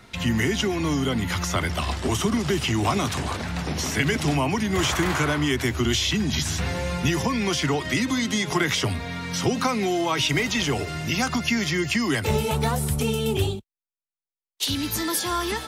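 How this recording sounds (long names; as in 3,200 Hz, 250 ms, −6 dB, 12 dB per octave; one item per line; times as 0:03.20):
background noise floor −94 dBFS
spectral slope −4.0 dB per octave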